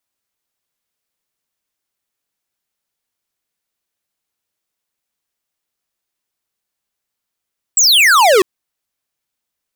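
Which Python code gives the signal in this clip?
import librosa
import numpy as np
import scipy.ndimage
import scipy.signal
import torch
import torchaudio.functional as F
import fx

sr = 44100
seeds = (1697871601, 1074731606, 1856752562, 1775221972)

y = fx.laser_zap(sr, level_db=-9, start_hz=8000.0, end_hz=350.0, length_s=0.65, wave='square')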